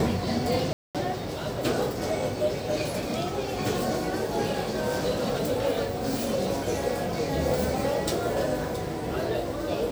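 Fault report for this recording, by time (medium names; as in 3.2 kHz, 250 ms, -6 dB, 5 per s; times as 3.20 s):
0.73–0.95 s: dropout 217 ms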